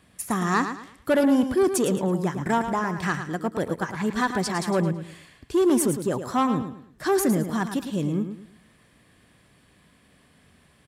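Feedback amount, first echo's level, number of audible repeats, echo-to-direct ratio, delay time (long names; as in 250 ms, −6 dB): 31%, −9.0 dB, 3, −8.5 dB, 109 ms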